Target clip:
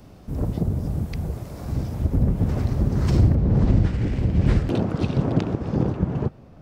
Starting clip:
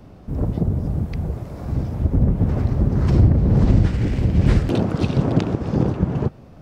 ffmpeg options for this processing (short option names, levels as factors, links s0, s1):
-af "asetnsamples=n=441:p=0,asendcmd='3.35 highshelf g -3',highshelf=f=3600:g=11,volume=0.708"